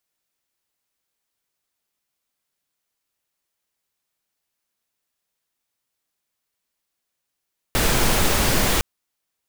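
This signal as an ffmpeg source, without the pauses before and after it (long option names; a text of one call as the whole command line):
ffmpeg -f lavfi -i "anoisesrc=color=pink:amplitude=0.61:duration=1.06:sample_rate=44100:seed=1" out.wav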